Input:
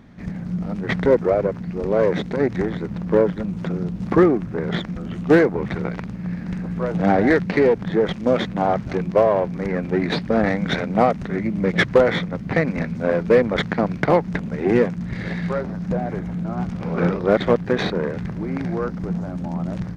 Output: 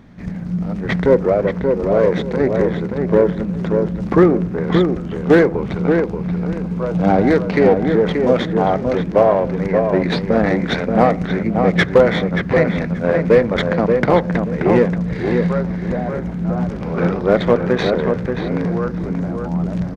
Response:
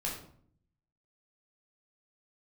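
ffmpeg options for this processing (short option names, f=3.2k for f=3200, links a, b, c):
-filter_complex "[0:a]asettb=1/sr,asplit=3[a][b][c];[a]atrim=end=5.534[d];[b]atrim=start=5.53:end=7.53,asetpts=PTS-STARTPTS,afade=t=in:d=0.004:c=qsin,afade=t=out:st=1.996:d=0.004:c=qsin,equalizer=f=1.8k:t=o:w=0.26:g=-9.5[e];[c]atrim=start=7.526[f];[d][e]acrossfade=d=0.004:c1=hsin:c2=qsin[g];[g][f]acrossfade=d=0.004:c1=qsin:c2=hsin,asplit=2[h][i];[i]adelay=580,lowpass=f=2k:p=1,volume=-4.5dB,asplit=2[j][k];[k]adelay=580,lowpass=f=2k:p=1,volume=0.24,asplit=2[l][m];[m]adelay=580,lowpass=f=2k:p=1,volume=0.24[n];[h][j][l][n]amix=inputs=4:normalize=0,asplit=2[o][p];[1:a]atrim=start_sample=2205,lowpass=1.3k[q];[p][q]afir=irnorm=-1:irlink=0,volume=-18dB[r];[o][r]amix=inputs=2:normalize=0,volume=2dB"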